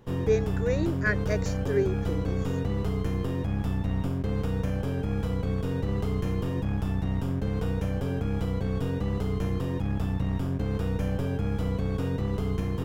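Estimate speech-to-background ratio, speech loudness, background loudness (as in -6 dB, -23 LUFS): -0.5 dB, -30.0 LUFS, -29.5 LUFS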